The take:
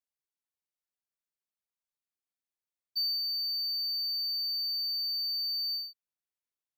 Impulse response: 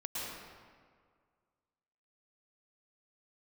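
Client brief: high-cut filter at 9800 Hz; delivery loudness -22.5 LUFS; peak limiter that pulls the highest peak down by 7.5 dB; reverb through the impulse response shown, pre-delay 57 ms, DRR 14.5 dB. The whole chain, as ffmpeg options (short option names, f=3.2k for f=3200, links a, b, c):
-filter_complex "[0:a]lowpass=9.8k,alimiter=level_in=9dB:limit=-24dB:level=0:latency=1,volume=-9dB,asplit=2[a][b];[1:a]atrim=start_sample=2205,adelay=57[c];[b][c]afir=irnorm=-1:irlink=0,volume=-17.5dB[d];[a][d]amix=inputs=2:normalize=0,volume=12dB"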